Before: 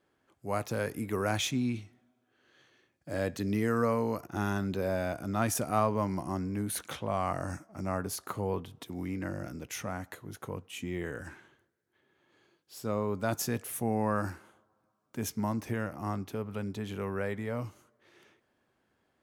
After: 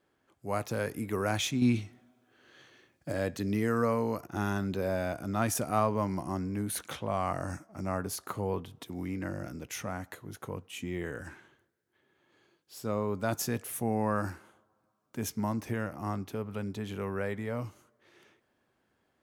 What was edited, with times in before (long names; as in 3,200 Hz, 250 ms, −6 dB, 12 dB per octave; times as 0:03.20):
0:01.62–0:03.12: clip gain +6.5 dB